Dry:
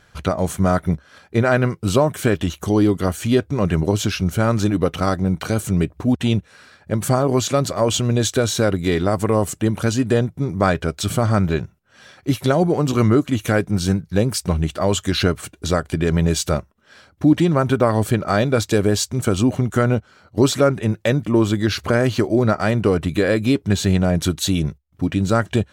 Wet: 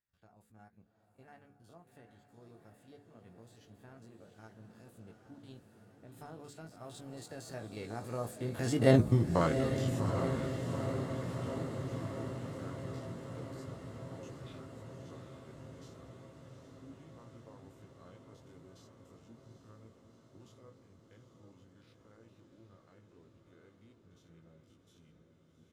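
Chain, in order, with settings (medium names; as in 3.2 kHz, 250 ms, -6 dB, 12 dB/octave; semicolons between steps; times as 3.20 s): spectrogram pixelated in time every 50 ms; Doppler pass-by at 9.02 s, 43 m/s, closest 3.2 m; in parallel at -11 dB: crossover distortion -54 dBFS; on the sum: doubling 18 ms -8 dB; de-hum 71.96 Hz, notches 7; on a send: echo that smears into a reverb 792 ms, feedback 73%, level -7 dB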